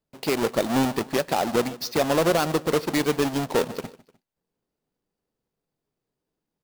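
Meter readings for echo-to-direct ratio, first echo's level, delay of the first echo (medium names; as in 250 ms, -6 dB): -18.5 dB, -19.0 dB, 151 ms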